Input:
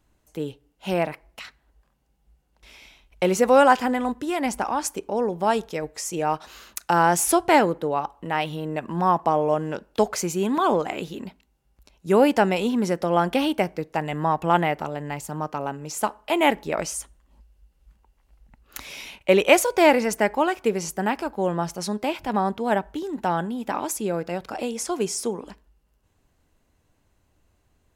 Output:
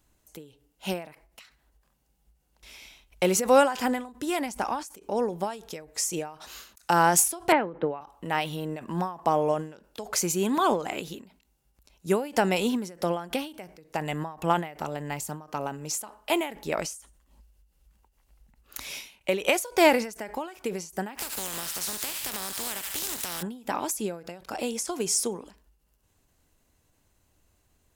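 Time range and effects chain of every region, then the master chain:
7.52–8.01 LPF 2600 Hz 24 dB/oct + three-band squash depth 70%
21.17–23.41 spectral contrast lowered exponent 0.33 + thin delay 73 ms, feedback 47%, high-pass 1500 Hz, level -9.5 dB + compressor 10:1, threshold -30 dBFS
whole clip: high shelf 4500 Hz +10 dB; ending taper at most 120 dB/s; gain -2.5 dB

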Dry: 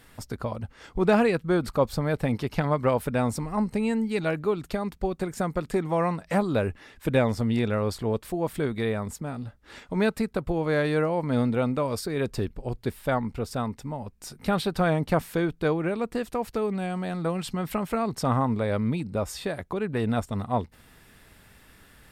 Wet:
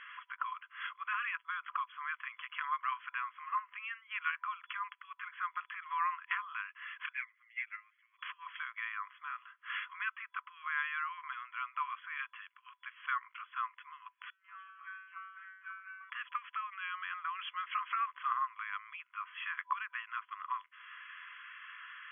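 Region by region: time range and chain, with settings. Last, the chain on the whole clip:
7.13–8.19 band-pass 2100 Hz, Q 6.8 + comb 6.5 ms, depth 74% + upward expander 2.5:1, over -49 dBFS
14.3–16.1 tape spacing loss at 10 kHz 34 dB + resonator 190 Hz, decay 0.76 s, mix 100%
whole clip: tilt -2 dB/oct; compressor 3:1, threshold -34 dBFS; FFT band-pass 1000–3400 Hz; gain +11 dB

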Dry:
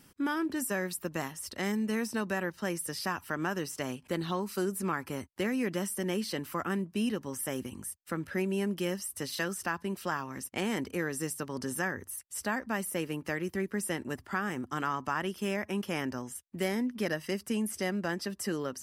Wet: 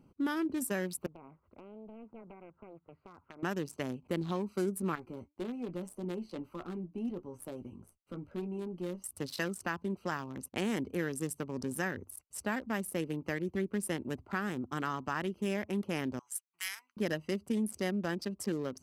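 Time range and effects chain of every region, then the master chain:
1.06–3.43 compressor 8:1, threshold -34 dBFS + ladder low-pass 1800 Hz, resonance 50% + Doppler distortion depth 0.85 ms
4.95–9.04 flange 1.7 Hz, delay 2.2 ms, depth 1.5 ms, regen +90% + tube stage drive 29 dB, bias 0.25 + doubler 17 ms -7 dB
16.19–16.97 inverse Chebyshev high-pass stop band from 590 Hz + bell 12000 Hz +7 dB 2.2 oct
whole clip: Wiener smoothing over 25 samples; dynamic EQ 970 Hz, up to -4 dB, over -43 dBFS, Q 0.98

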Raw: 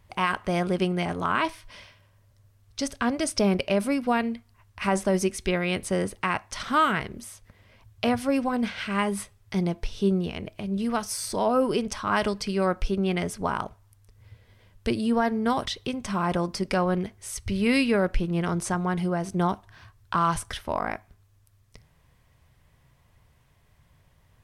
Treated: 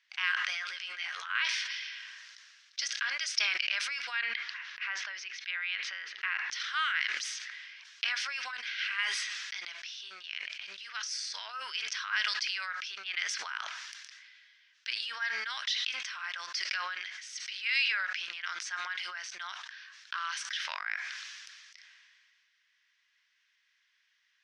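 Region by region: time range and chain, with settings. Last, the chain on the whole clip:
0.5–1.3 doubler 13 ms -4 dB + compressor 5:1, threshold -25 dBFS
4.21–6.51 air absorption 230 m + notches 50/100/150/200/250/300/350/400/450 Hz
whole clip: Chebyshev band-pass 1600–5800 Hz, order 3; sustainer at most 26 dB/s

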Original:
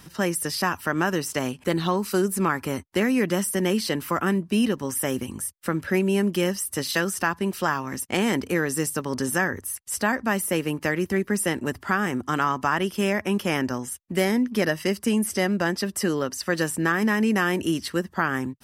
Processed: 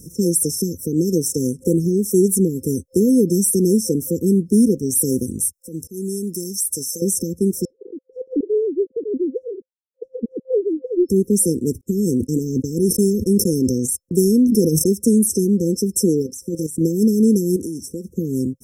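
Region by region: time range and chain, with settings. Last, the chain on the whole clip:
5.53–7.02 tilt shelf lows -6 dB, about 1400 Hz + compressor 2.5:1, threshold -31 dBFS + auto swell 0.135 s
7.65–11.09 sine-wave speech + low shelf 260 Hz -10 dB + Doppler distortion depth 0.35 ms
11.81–14.86 gate -36 dBFS, range -41 dB + sustainer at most 31 dB/s
16.22–16.81 notch 490 Hz, Q 10 + level quantiser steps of 14 dB
17.56–18.09 HPF 83 Hz + compressor 12:1, threshold -31 dBFS
whole clip: FFT band-reject 520–5300 Hz; bell 9600 Hz +3 dB 0.56 oct; gain +8 dB

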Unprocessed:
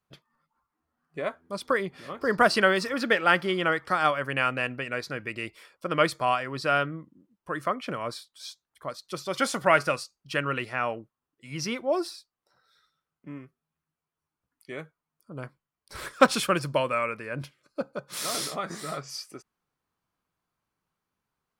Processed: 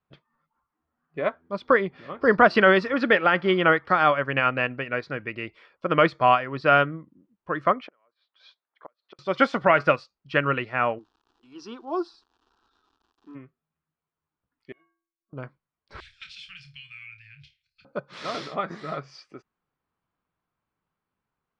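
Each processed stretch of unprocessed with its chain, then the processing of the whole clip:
7.87–9.19 flipped gate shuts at -26 dBFS, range -34 dB + BPF 440–3000 Hz
10.98–13.34 low shelf 190 Hz -11.5 dB + crackle 250/s -44 dBFS + fixed phaser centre 570 Hz, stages 6
14.72–15.33 compressor 2:1, threshold -43 dBFS + metallic resonator 330 Hz, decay 0.59 s, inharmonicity 0.03
16–17.85 inverse Chebyshev band-stop 280–830 Hz, stop band 70 dB + compressor 2:1, threshold -38 dBFS + flutter echo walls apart 4.7 m, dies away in 0.22 s
whole clip: Bessel low-pass 2800 Hz, order 4; maximiser +13.5 dB; upward expander 1.5:1, over -25 dBFS; gain -4.5 dB

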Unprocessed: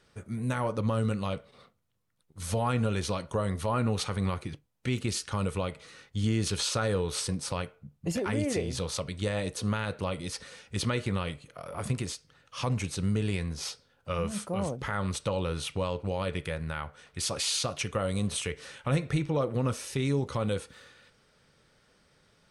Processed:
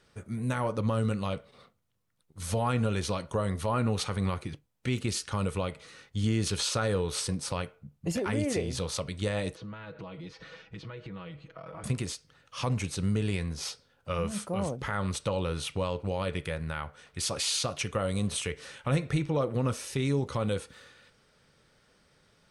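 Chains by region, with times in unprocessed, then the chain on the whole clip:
9.55–11.84 comb 6.2 ms, depth 88% + compressor 8:1, threshold -38 dBFS + air absorption 220 m
whole clip: dry

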